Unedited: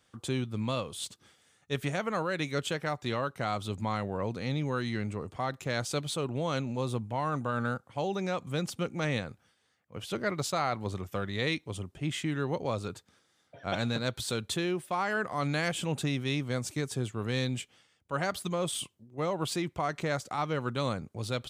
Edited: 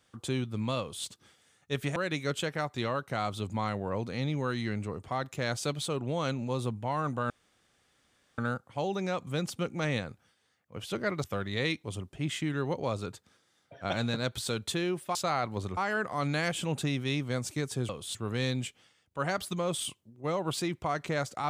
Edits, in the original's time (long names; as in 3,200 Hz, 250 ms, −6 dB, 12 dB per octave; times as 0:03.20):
0:00.80–0:01.06: duplicate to 0:17.09
0:01.96–0:02.24: remove
0:07.58: splice in room tone 1.08 s
0:10.44–0:11.06: move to 0:14.97